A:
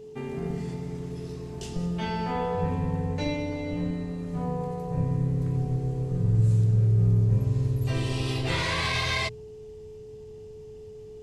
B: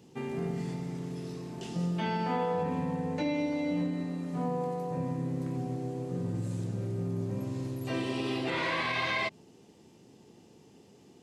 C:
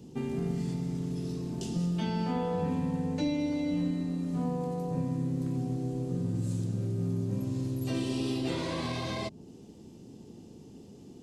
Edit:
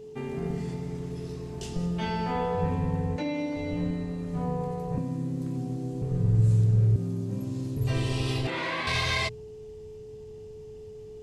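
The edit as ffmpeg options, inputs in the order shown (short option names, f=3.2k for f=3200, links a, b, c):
-filter_complex "[1:a]asplit=2[a][b];[2:a]asplit=2[c][d];[0:a]asplit=5[e][f][g][h][i];[e]atrim=end=3.162[j];[a]atrim=start=3.158:end=3.562[k];[f]atrim=start=3.558:end=4.982[l];[c]atrim=start=4.978:end=6.022[m];[g]atrim=start=6.018:end=6.962[n];[d]atrim=start=6.958:end=7.772[o];[h]atrim=start=7.768:end=8.472[p];[b]atrim=start=8.468:end=8.872[q];[i]atrim=start=8.868[r];[j][k]acrossfade=d=0.004:c1=hsin:c2=hsin[s];[s][l]acrossfade=d=0.004:c1=hsin:c2=hsin[t];[t][m]acrossfade=d=0.004:c1=hsin:c2=hsin[u];[u][n]acrossfade=d=0.004:c1=hsin:c2=hsin[v];[v][o]acrossfade=d=0.004:c1=hsin:c2=hsin[w];[w][p]acrossfade=d=0.004:c1=hsin:c2=hsin[x];[x][q]acrossfade=d=0.004:c1=hsin:c2=hsin[y];[y][r]acrossfade=d=0.004:c1=hsin:c2=hsin"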